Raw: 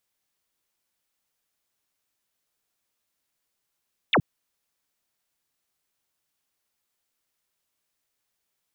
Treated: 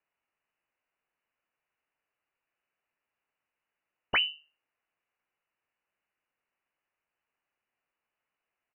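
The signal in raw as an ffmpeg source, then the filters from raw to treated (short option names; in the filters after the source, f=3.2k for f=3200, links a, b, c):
-f lavfi -i "aevalsrc='0.158*clip(t/0.002,0,1)*clip((0.07-t)/0.002,0,1)*sin(2*PI*4000*0.07/log(99/4000)*(exp(log(99/4000)*t/0.07)-1))':d=0.07:s=44100"
-af "bandreject=f=50:t=h:w=6,bandreject=f=100:t=h:w=6,bandreject=f=150:t=h:w=6,bandreject=f=200:t=h:w=6,bandreject=f=250:t=h:w=6,bandreject=f=300:t=h:w=6,aresample=11025,aeval=exprs='clip(val(0),-1,0.0119)':c=same,aresample=44100,lowpass=f=2.6k:t=q:w=0.5098,lowpass=f=2.6k:t=q:w=0.6013,lowpass=f=2.6k:t=q:w=0.9,lowpass=f=2.6k:t=q:w=2.563,afreqshift=-3000"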